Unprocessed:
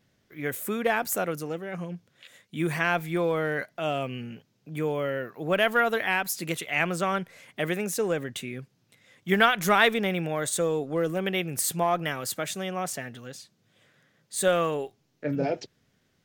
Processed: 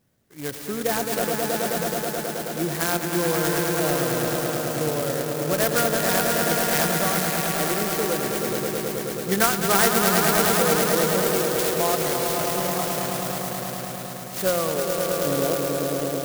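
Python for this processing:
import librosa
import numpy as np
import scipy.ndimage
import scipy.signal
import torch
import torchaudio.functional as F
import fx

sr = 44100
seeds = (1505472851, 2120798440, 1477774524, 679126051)

p1 = x + fx.echo_swell(x, sr, ms=107, loudest=5, wet_db=-6.0, dry=0)
y = fx.clock_jitter(p1, sr, seeds[0], jitter_ms=0.1)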